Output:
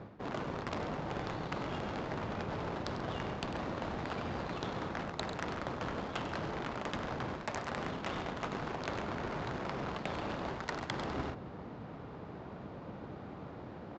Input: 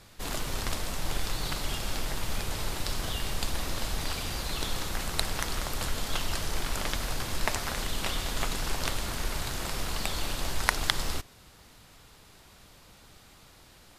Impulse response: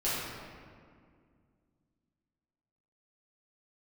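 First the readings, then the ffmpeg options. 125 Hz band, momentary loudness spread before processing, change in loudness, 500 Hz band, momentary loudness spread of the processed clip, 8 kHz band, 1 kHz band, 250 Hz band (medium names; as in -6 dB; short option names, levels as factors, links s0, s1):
-4.5 dB, 4 LU, -7.0 dB, +1.0 dB, 8 LU, -21.5 dB, -1.5 dB, +1.0 dB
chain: -af "adynamicsmooth=sensitivity=2.5:basefreq=780,apsyclip=4.47,highpass=140,aresample=16000,asoftclip=type=tanh:threshold=0.355,aresample=44100,aecho=1:1:98|137:0.211|0.141,areverse,acompressor=threshold=0.0126:ratio=16,areverse,volume=1.5"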